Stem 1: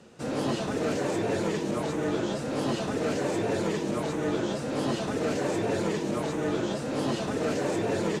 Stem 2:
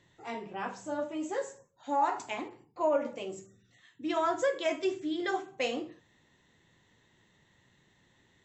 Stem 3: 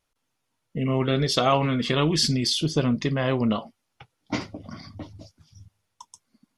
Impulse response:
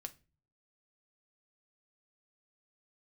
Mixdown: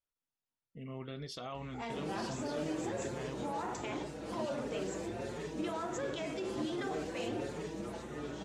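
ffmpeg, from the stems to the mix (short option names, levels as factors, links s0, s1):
-filter_complex "[0:a]asplit=2[s0][s1];[s1]adelay=5.2,afreqshift=1.4[s2];[s0][s2]amix=inputs=2:normalize=1,adelay=1700,volume=0.335[s3];[1:a]aeval=exprs='val(0)+0.00141*(sin(2*PI*60*n/s)+sin(2*PI*2*60*n/s)/2+sin(2*PI*3*60*n/s)/3+sin(2*PI*4*60*n/s)/4+sin(2*PI*5*60*n/s)/5)':c=same,adelay=1550,volume=1.33[s4];[2:a]volume=0.1[s5];[s4][s5]amix=inputs=2:normalize=0,alimiter=level_in=2.66:limit=0.0631:level=0:latency=1:release=51,volume=0.376,volume=1[s6];[s3][s6]amix=inputs=2:normalize=0"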